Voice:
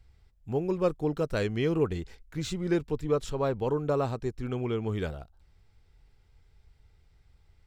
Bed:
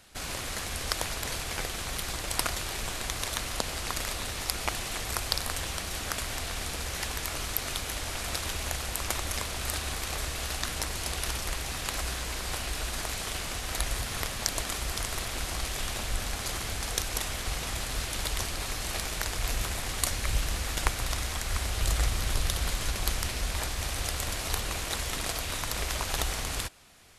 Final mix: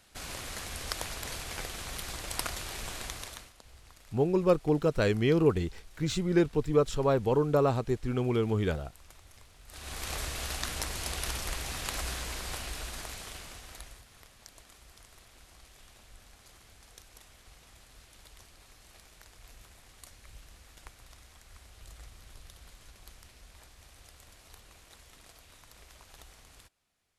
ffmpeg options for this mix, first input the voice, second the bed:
ffmpeg -i stem1.wav -i stem2.wav -filter_complex "[0:a]adelay=3650,volume=2.5dB[link_01];[1:a]volume=17.5dB,afade=type=out:start_time=3.02:duration=0.51:silence=0.1,afade=type=in:start_time=9.68:duration=0.42:silence=0.0749894,afade=type=out:start_time=12.14:duration=1.9:silence=0.0944061[link_02];[link_01][link_02]amix=inputs=2:normalize=0" out.wav

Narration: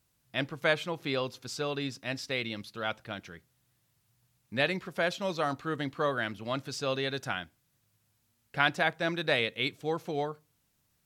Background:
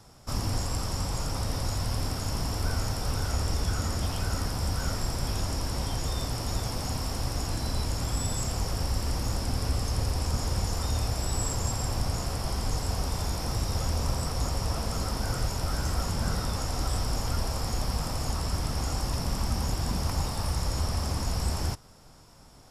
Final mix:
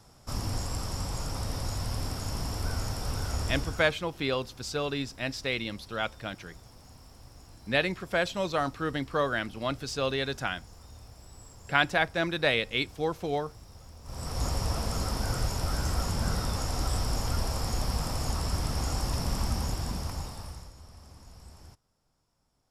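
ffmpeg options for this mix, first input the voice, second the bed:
ffmpeg -i stem1.wav -i stem2.wav -filter_complex "[0:a]adelay=3150,volume=2dB[link_01];[1:a]volume=17.5dB,afade=type=out:start_time=3.48:duration=0.48:silence=0.125893,afade=type=in:start_time=14.04:duration=0.42:silence=0.0944061,afade=type=out:start_time=19.42:duration=1.31:silence=0.0891251[link_02];[link_01][link_02]amix=inputs=2:normalize=0" out.wav

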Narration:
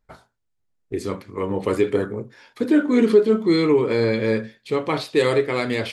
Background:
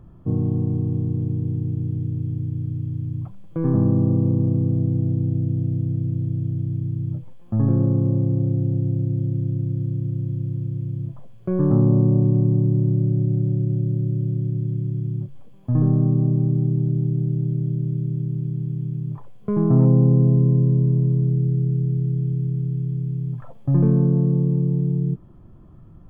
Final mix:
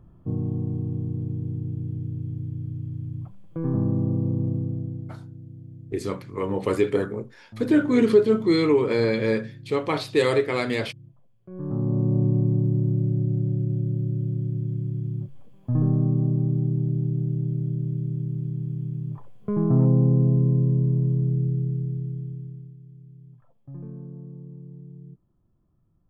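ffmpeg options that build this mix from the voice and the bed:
ffmpeg -i stem1.wav -i stem2.wav -filter_complex "[0:a]adelay=5000,volume=-2dB[link_01];[1:a]volume=10.5dB,afade=type=out:start_time=4.48:duration=0.72:silence=0.199526,afade=type=in:start_time=11.49:duration=0.75:silence=0.158489,afade=type=out:start_time=21.42:duration=1.34:silence=0.125893[link_02];[link_01][link_02]amix=inputs=2:normalize=0" out.wav

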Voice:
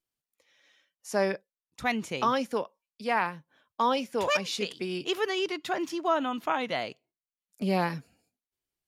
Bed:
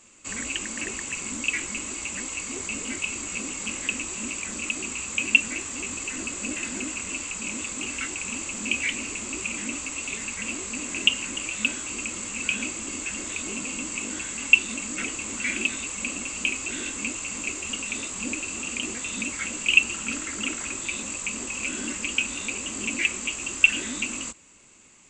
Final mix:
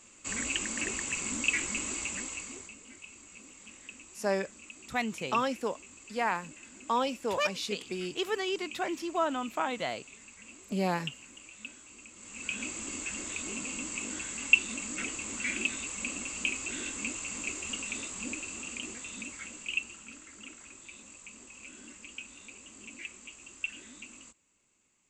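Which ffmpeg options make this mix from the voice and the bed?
ffmpeg -i stem1.wav -i stem2.wav -filter_complex "[0:a]adelay=3100,volume=-3dB[link_01];[1:a]volume=12dB,afade=type=out:start_time=1.95:duration=0.8:silence=0.133352,afade=type=in:start_time=12.15:duration=0.63:silence=0.199526,afade=type=out:start_time=17.75:duration=2.37:silence=0.223872[link_02];[link_01][link_02]amix=inputs=2:normalize=0" out.wav

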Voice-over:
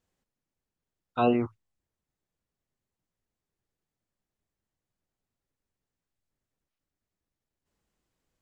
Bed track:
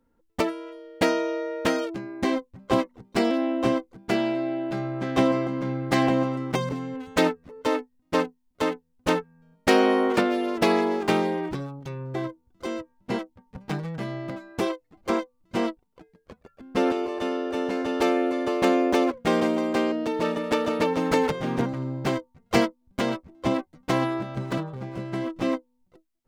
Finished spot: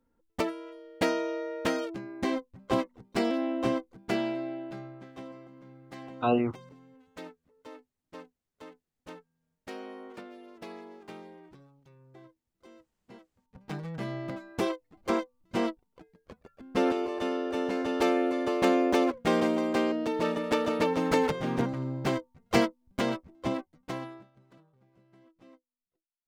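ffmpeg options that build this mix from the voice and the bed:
ffmpeg -i stem1.wav -i stem2.wav -filter_complex "[0:a]adelay=5050,volume=-1.5dB[link_01];[1:a]volume=15dB,afade=type=out:start_time=4.18:duration=0.95:silence=0.125893,afade=type=in:start_time=13.34:duration=0.73:silence=0.1,afade=type=out:start_time=23.08:duration=1.23:silence=0.0421697[link_02];[link_01][link_02]amix=inputs=2:normalize=0" out.wav

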